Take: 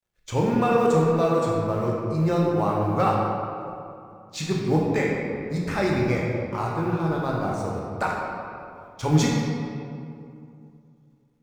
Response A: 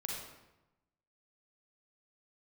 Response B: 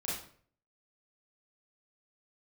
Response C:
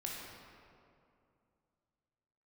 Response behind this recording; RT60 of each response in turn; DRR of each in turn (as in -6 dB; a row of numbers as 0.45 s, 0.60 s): C; 0.95 s, 0.50 s, 2.5 s; -2.0 dB, -8.0 dB, -3.0 dB